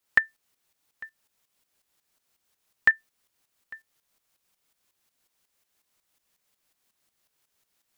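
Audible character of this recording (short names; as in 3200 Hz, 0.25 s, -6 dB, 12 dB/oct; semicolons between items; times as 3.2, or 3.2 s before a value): a quantiser's noise floor 12-bit, dither triangular; tremolo saw up 5.5 Hz, depth 70%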